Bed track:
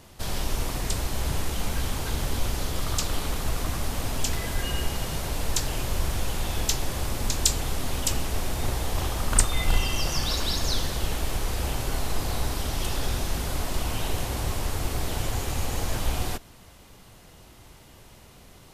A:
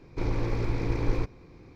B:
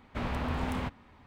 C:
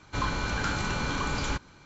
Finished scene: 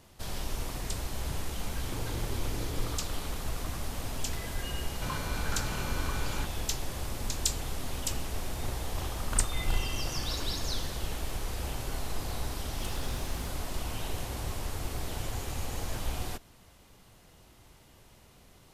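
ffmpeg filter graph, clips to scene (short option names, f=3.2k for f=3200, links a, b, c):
-filter_complex "[1:a]asplit=2[a][b];[0:a]volume=-7dB[c];[2:a]acrusher=bits=2:mode=log:mix=0:aa=0.000001[d];[a]atrim=end=1.75,asetpts=PTS-STARTPTS,volume=-10dB,afade=t=in:d=0.004:c=hsin,afade=t=out:st=1.746:d=0.004:c=hsin,adelay=1710[e];[3:a]atrim=end=1.85,asetpts=PTS-STARTPTS,volume=-7.5dB,afade=t=in:d=0.004:c=hsin,afade=t=out:st=1.846:d=0.004:c=hsin,adelay=4880[f];[b]atrim=end=1.75,asetpts=PTS-STARTPTS,volume=-17dB,afade=t=in:d=0.004:c=hsin,afade=t=out:st=1.746:d=0.004:c=hsin,adelay=413658S[g];[d]atrim=end=1.26,asetpts=PTS-STARTPTS,volume=-15dB,afade=t=in:d=0.004:c=hsin,afade=t=out:st=1.256:d=0.004:c=hsin,adelay=12620[h];[c][e][f][g][h]amix=inputs=5:normalize=0"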